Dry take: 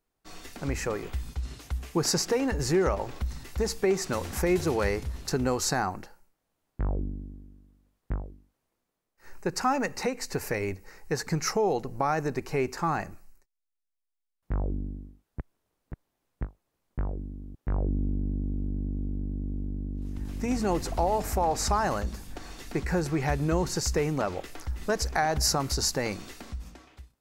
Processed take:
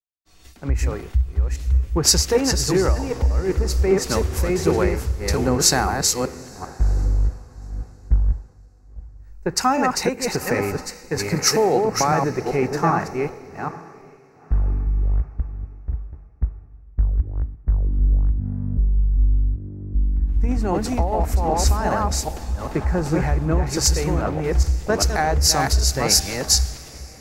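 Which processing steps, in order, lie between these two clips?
delay that plays each chunk backwards 391 ms, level −2.5 dB
parametric band 66 Hz +12 dB 1.2 octaves
downward compressor 4 to 1, threshold −23 dBFS, peak gain reduction 9 dB
on a send: feedback delay with all-pass diffusion 910 ms, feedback 48%, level −11 dB
on the sum: multiband upward and downward expander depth 100%
level +6.5 dB

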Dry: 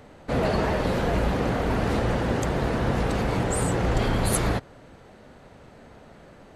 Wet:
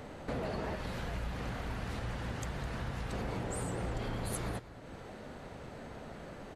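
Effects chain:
0:00.75–0:03.13: parametric band 400 Hz −9.5 dB 2.3 octaves
downward compressor 3 to 1, threshold −42 dBFS, peak gain reduction 17.5 dB
single-tap delay 207 ms −15.5 dB
level +2 dB

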